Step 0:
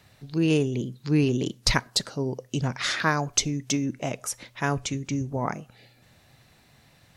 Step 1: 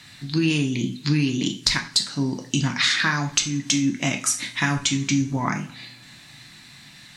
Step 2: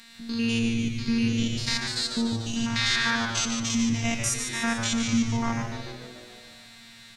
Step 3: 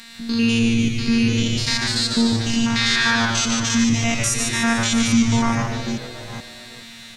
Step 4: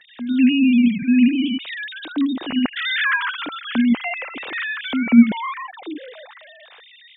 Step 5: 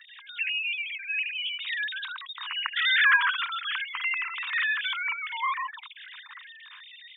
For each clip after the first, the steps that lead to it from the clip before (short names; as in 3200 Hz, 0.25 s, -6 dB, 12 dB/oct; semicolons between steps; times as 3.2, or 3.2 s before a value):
graphic EQ 125/250/500/1000/2000/4000/8000 Hz +3/+11/-9/+5/+10/+11/+11 dB; compressor 6:1, threshold -20 dBFS, peak gain reduction 15 dB; two-slope reverb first 0.36 s, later 2.5 s, from -27 dB, DRR 3 dB
stepped spectrum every 0.1 s; robotiser 231 Hz; on a send: frequency-shifting echo 0.146 s, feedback 62%, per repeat -120 Hz, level -7 dB
reverse delay 0.427 s, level -11.5 dB; in parallel at 0 dB: limiter -16.5 dBFS, peak gain reduction 10 dB; on the sum: gain +2.5 dB
sine-wave speech
bin magnitudes rounded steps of 15 dB; steep high-pass 960 Hz 96 dB/oct